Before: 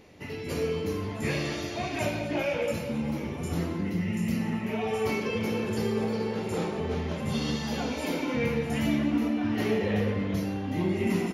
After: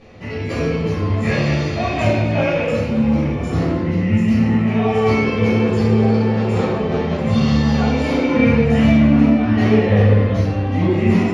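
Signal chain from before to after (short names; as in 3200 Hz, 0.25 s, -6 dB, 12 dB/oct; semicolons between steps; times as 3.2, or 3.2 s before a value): air absorption 93 m; shoebox room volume 440 m³, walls furnished, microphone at 6 m; gain +2 dB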